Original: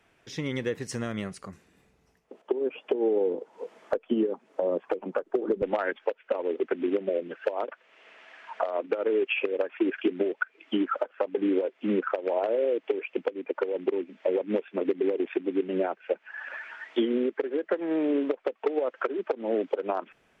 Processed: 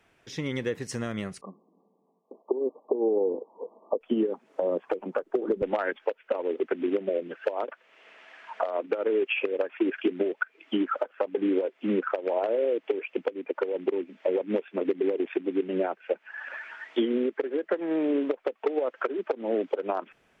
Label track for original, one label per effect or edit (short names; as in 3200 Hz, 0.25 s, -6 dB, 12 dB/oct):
1.410000	4.010000	brick-wall FIR band-pass 170–1200 Hz